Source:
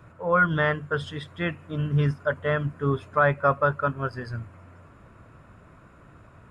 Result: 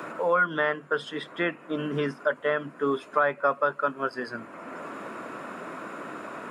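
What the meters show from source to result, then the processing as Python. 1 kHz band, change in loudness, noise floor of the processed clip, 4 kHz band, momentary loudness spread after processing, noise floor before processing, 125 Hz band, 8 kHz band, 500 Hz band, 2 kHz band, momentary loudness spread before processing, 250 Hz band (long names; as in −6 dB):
−1.0 dB, −3.5 dB, −49 dBFS, +0.5 dB, 14 LU, −52 dBFS, −15.0 dB, can't be measured, −0.5 dB, −1.5 dB, 12 LU, −2.5 dB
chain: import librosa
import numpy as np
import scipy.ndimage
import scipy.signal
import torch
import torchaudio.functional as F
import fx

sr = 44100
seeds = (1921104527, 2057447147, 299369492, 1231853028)

y = scipy.signal.sosfilt(scipy.signal.butter(4, 240.0, 'highpass', fs=sr, output='sos'), x)
y = fx.band_squash(y, sr, depth_pct=70)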